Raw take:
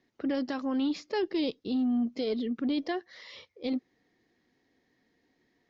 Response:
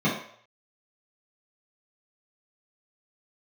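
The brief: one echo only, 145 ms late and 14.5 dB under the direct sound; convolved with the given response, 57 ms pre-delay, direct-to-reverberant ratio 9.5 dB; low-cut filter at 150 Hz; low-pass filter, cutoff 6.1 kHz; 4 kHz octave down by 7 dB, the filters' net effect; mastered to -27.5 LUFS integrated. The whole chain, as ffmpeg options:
-filter_complex "[0:a]highpass=150,lowpass=6100,equalizer=f=4000:t=o:g=-8.5,aecho=1:1:145:0.188,asplit=2[s0][s1];[1:a]atrim=start_sample=2205,adelay=57[s2];[s1][s2]afir=irnorm=-1:irlink=0,volume=0.0668[s3];[s0][s3]amix=inputs=2:normalize=0,volume=1.26"

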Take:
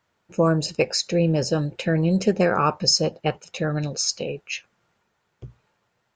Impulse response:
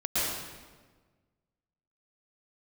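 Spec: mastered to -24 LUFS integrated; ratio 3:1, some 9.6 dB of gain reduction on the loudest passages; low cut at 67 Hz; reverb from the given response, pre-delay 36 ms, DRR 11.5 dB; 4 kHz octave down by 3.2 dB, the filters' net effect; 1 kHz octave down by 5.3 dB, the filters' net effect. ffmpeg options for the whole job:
-filter_complex "[0:a]highpass=67,equalizer=f=1000:t=o:g=-7,equalizer=f=4000:t=o:g=-4.5,acompressor=threshold=0.0316:ratio=3,asplit=2[s0][s1];[1:a]atrim=start_sample=2205,adelay=36[s2];[s1][s2]afir=irnorm=-1:irlink=0,volume=0.0794[s3];[s0][s3]amix=inputs=2:normalize=0,volume=2.51"

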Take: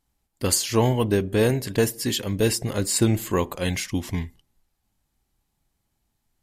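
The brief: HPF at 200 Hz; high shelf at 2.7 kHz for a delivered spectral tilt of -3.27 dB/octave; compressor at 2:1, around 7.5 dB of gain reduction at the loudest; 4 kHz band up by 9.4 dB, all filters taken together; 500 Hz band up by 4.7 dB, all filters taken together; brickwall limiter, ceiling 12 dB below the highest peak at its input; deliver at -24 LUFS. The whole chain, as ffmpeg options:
-af "highpass=200,equalizer=f=500:t=o:g=5.5,highshelf=f=2700:g=5,equalizer=f=4000:t=o:g=7.5,acompressor=threshold=0.0631:ratio=2,volume=1.5,alimiter=limit=0.224:level=0:latency=1"

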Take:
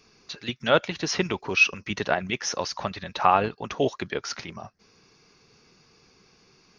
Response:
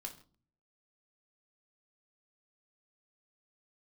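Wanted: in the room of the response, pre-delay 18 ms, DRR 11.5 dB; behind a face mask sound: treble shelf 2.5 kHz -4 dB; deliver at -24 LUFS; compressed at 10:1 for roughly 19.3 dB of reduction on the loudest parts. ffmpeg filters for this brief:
-filter_complex "[0:a]acompressor=threshold=0.02:ratio=10,asplit=2[s0][s1];[1:a]atrim=start_sample=2205,adelay=18[s2];[s1][s2]afir=irnorm=-1:irlink=0,volume=0.398[s3];[s0][s3]amix=inputs=2:normalize=0,highshelf=f=2500:g=-4,volume=6.31"

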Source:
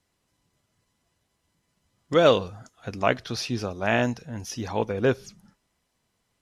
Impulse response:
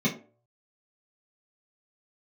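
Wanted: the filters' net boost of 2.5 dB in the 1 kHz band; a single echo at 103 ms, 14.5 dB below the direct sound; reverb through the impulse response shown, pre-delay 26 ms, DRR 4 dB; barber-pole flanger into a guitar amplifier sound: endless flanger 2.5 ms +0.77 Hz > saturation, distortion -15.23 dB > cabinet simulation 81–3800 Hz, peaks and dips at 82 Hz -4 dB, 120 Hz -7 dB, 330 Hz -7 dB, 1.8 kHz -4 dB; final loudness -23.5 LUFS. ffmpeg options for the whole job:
-filter_complex "[0:a]equalizer=f=1000:t=o:g=4,aecho=1:1:103:0.188,asplit=2[s0][s1];[1:a]atrim=start_sample=2205,adelay=26[s2];[s1][s2]afir=irnorm=-1:irlink=0,volume=0.188[s3];[s0][s3]amix=inputs=2:normalize=0,asplit=2[s4][s5];[s5]adelay=2.5,afreqshift=0.77[s6];[s4][s6]amix=inputs=2:normalize=1,asoftclip=threshold=0.224,highpass=81,equalizer=f=82:t=q:w=4:g=-4,equalizer=f=120:t=q:w=4:g=-7,equalizer=f=330:t=q:w=4:g=-7,equalizer=f=1800:t=q:w=4:g=-4,lowpass=f=3800:w=0.5412,lowpass=f=3800:w=1.3066,volume=1.41"

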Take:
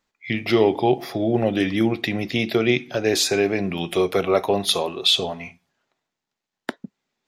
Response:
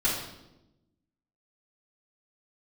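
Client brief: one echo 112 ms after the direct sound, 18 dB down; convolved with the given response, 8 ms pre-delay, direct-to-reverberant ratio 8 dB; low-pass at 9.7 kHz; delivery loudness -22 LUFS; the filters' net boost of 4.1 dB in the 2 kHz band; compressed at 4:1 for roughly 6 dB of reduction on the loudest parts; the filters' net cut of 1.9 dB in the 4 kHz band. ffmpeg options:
-filter_complex "[0:a]lowpass=9700,equalizer=f=2000:t=o:g=6,equalizer=f=4000:t=o:g=-4,acompressor=threshold=0.112:ratio=4,aecho=1:1:112:0.126,asplit=2[s0][s1];[1:a]atrim=start_sample=2205,adelay=8[s2];[s1][s2]afir=irnorm=-1:irlink=0,volume=0.119[s3];[s0][s3]amix=inputs=2:normalize=0,volume=1.19"

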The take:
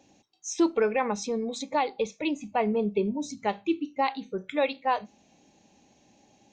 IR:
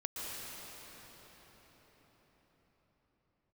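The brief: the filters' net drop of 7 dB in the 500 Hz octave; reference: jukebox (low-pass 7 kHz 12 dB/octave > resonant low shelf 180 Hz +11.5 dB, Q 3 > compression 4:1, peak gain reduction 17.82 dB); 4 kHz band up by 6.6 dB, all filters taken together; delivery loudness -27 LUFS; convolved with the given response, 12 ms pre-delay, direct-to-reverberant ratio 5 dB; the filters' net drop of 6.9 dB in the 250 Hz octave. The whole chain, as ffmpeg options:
-filter_complex "[0:a]equalizer=f=250:t=o:g=-3.5,equalizer=f=500:t=o:g=-5,equalizer=f=4000:t=o:g=8.5,asplit=2[s0][s1];[1:a]atrim=start_sample=2205,adelay=12[s2];[s1][s2]afir=irnorm=-1:irlink=0,volume=0.422[s3];[s0][s3]amix=inputs=2:normalize=0,lowpass=7000,lowshelf=f=180:t=q:w=3:g=11.5,acompressor=threshold=0.00708:ratio=4,volume=7.08"

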